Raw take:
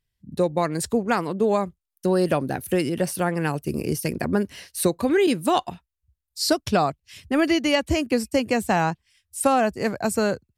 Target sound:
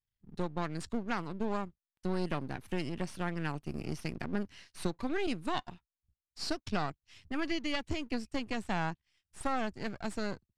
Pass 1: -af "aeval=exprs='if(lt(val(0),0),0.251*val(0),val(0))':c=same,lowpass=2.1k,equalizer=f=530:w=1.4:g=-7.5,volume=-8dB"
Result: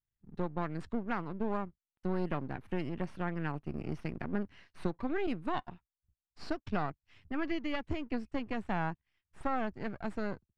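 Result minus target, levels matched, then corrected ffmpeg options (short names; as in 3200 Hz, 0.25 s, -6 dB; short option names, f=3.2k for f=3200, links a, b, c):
8000 Hz band -16.5 dB
-af "aeval=exprs='if(lt(val(0),0),0.251*val(0),val(0))':c=same,lowpass=5.8k,equalizer=f=530:w=1.4:g=-7.5,volume=-8dB"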